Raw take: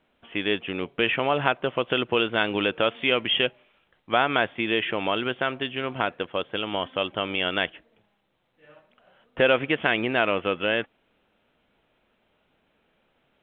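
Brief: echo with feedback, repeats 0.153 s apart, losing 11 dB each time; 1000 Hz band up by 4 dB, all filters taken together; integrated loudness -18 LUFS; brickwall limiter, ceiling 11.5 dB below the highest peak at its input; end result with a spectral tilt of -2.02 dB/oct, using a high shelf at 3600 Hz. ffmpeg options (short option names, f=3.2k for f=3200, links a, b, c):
-af "equalizer=f=1k:t=o:g=6,highshelf=f=3.6k:g=-4.5,alimiter=limit=-13dB:level=0:latency=1,aecho=1:1:153|306|459:0.282|0.0789|0.0221,volume=9dB"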